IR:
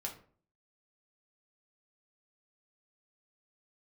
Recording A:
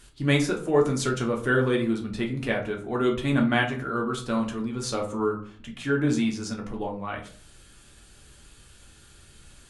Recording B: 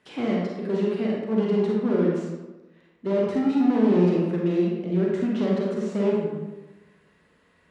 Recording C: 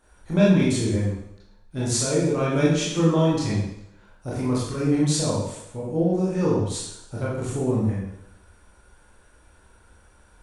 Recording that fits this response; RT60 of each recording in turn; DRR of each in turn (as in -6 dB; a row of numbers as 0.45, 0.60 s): A; 0.45, 1.1, 0.80 s; -0.5, -3.5, -8.0 dB